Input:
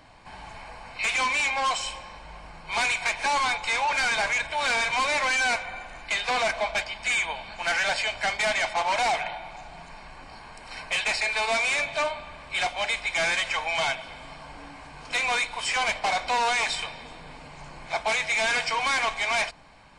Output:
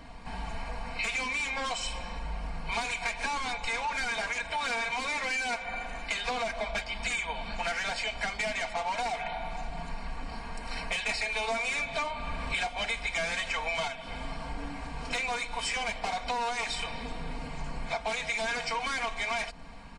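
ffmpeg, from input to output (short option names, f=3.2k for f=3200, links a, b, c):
-filter_complex "[0:a]asettb=1/sr,asplit=3[a][b][c];[a]atrim=end=4.114[d];[b]atrim=start=4.11:end=6.25,asetpts=PTS-STARTPTS,afade=t=in:d=0.004:c=qsin,afade=t=out:st=2.136:d=0.004:c=qsin,lowshelf=f=140:g=-7[e];[c]atrim=start=6.246[f];[d][e]acrossfade=d=0.004:c1=hsin:c2=qsin[g];[g][f]acrossfade=d=0.004:c1=qsin:c2=hsin,asettb=1/sr,asplit=3[h][i][j];[h]atrim=end=11.094[k];[i]atrim=start=11.09:end=13.88,asetpts=PTS-STARTPTS,afade=t=in:d=0.004:c=qsin,afade=t=out:st=2.786:d=0.004:c=qsin,acontrast=47[l];[j]atrim=start=13.876[m];[k][l]acrossfade=d=0.004:c1=hsin:c2=qsin[n];[n][m]acrossfade=d=0.004:c1=qsin:c2=hsin,lowshelf=f=270:g=10,aecho=1:1:4.3:0.62,acompressor=threshold=-29dB:ratio=10"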